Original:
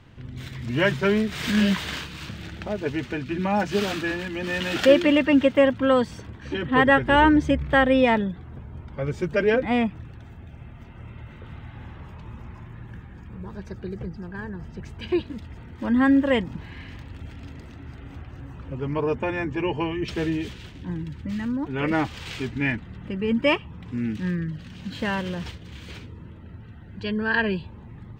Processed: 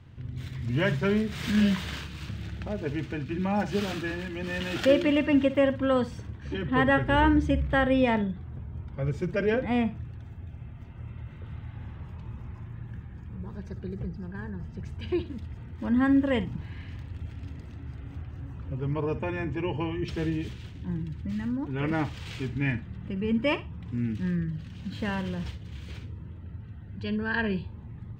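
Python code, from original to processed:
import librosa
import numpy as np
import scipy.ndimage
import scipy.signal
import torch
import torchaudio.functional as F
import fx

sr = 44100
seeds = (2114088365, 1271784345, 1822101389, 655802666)

y = fx.peak_eq(x, sr, hz=93.0, db=9.0, octaves=2.0)
y = fx.room_flutter(y, sr, wall_m=9.9, rt60_s=0.24)
y = y * librosa.db_to_amplitude(-6.5)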